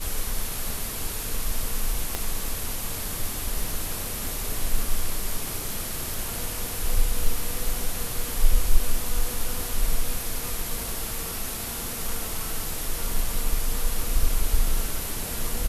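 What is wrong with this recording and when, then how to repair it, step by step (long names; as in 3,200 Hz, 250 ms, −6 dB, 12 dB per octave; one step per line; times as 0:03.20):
0:02.15: click −11 dBFS
0:06.14: click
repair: click removal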